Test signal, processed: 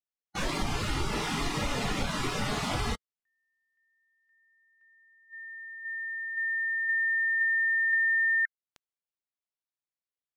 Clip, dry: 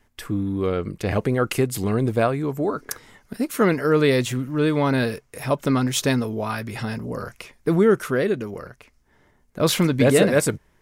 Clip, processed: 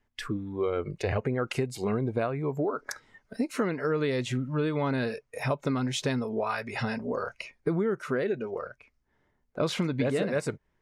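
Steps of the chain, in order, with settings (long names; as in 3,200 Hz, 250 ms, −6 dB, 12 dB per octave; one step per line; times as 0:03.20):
noise reduction from a noise print of the clip's start 14 dB
downward compressor 6 to 1, threshold −27 dBFS
high-frequency loss of the air 76 metres
level +2 dB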